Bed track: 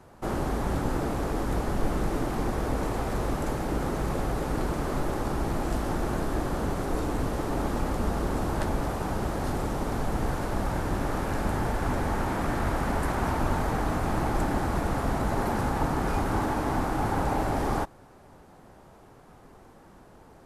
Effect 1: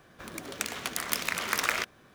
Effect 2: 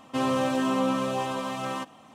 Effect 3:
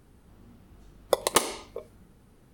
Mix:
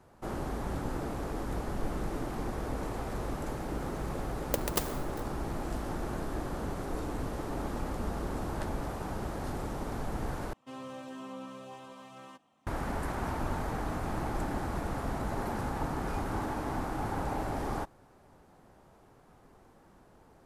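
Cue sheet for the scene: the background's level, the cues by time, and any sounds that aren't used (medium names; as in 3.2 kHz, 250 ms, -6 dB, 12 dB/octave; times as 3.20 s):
bed track -7 dB
3.41 s: add 3 -9 dB + sampling jitter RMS 0.15 ms
10.53 s: replace with 2 -18 dB
not used: 1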